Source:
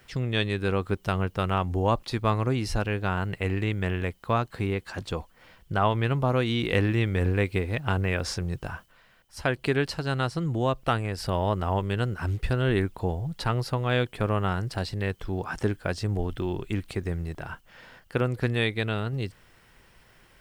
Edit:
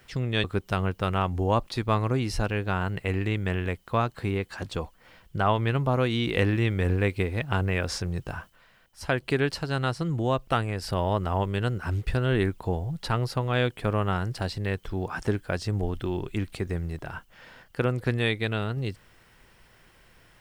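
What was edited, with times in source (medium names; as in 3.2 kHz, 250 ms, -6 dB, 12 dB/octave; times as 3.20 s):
0.44–0.80 s: delete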